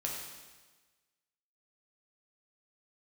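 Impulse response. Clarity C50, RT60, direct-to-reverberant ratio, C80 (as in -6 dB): 1.5 dB, 1.3 s, -2.5 dB, 3.5 dB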